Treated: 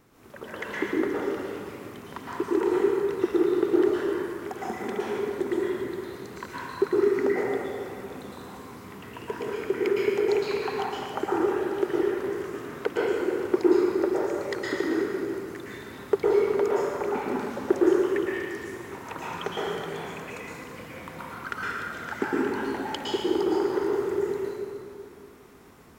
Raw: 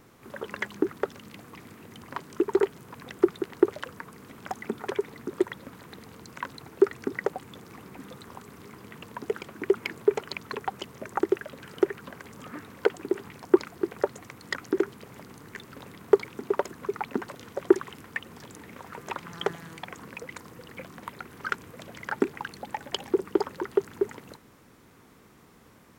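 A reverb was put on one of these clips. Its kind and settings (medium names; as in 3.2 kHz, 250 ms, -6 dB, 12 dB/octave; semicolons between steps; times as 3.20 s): plate-style reverb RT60 2.5 s, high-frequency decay 0.65×, pre-delay 100 ms, DRR -7.5 dB; trim -5 dB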